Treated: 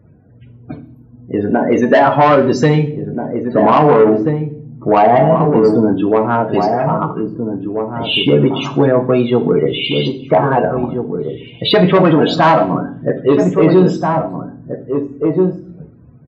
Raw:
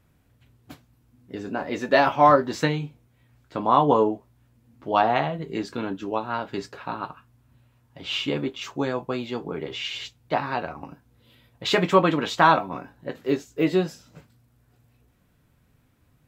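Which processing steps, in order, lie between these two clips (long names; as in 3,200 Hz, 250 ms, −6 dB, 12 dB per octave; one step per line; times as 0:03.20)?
in parallel at −11.5 dB: wave folding −17.5 dBFS
0:05.36–0:05.89: on the sum: parametric band 2,200 Hz −11.5 dB 2.2 octaves
spectral peaks only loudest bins 32
low-shelf EQ 410 Hz +7 dB
hollow resonant body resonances 450/650 Hz, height 7 dB, ringing for 70 ms
soft clipping −10.5 dBFS, distortion −13 dB
high-pass filter 90 Hz
slap from a distant wall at 280 metres, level −7 dB
on a send at −8 dB: convolution reverb RT60 0.55 s, pre-delay 6 ms
on the sum: boost into a limiter +11 dB
level −1 dB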